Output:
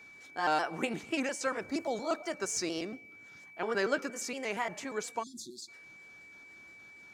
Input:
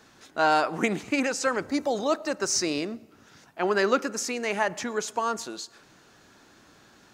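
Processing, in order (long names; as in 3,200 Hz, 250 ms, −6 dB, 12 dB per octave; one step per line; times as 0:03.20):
pitch shifter gated in a rhythm +2 semitones, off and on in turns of 117 ms
steady tone 2,300 Hz −44 dBFS
time-frequency box erased 0:05.23–0:05.68, 380–3,300 Hz
level −7 dB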